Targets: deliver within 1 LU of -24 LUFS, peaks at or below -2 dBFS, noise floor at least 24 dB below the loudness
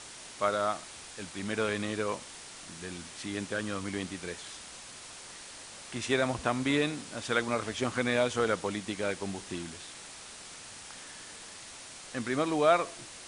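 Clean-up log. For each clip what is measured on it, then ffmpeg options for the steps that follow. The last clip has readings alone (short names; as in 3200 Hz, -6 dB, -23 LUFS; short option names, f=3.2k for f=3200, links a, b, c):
noise floor -47 dBFS; noise floor target -56 dBFS; loudness -32.0 LUFS; peak -10.5 dBFS; loudness target -24.0 LUFS
-> -af "afftdn=nr=9:nf=-47"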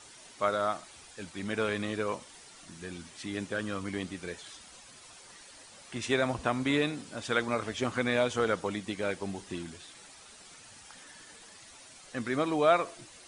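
noise floor -53 dBFS; noise floor target -56 dBFS
-> -af "afftdn=nr=6:nf=-53"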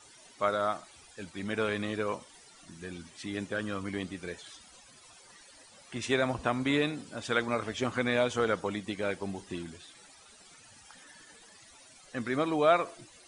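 noise floor -56 dBFS; loudness -32.0 LUFS; peak -10.5 dBFS; loudness target -24.0 LUFS
-> -af "volume=8dB"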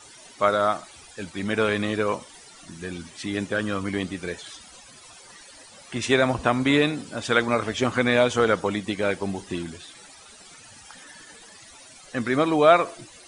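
loudness -24.0 LUFS; peak -2.5 dBFS; noise floor -48 dBFS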